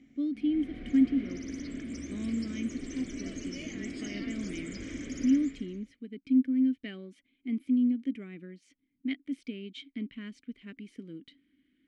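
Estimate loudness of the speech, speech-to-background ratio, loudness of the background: -31.5 LUFS, 8.5 dB, -40.0 LUFS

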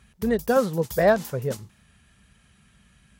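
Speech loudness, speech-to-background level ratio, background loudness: -23.5 LUFS, 16.0 dB, -39.5 LUFS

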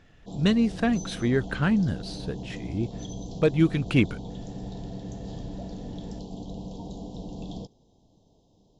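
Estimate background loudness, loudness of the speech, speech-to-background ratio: -38.5 LUFS, -26.0 LUFS, 12.5 dB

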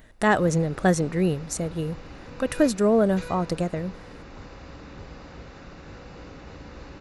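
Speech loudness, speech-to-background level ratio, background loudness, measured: -24.0 LUFS, 19.0 dB, -43.0 LUFS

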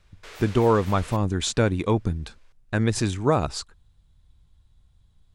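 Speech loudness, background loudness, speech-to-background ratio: -24.0 LUFS, -43.0 LUFS, 19.0 dB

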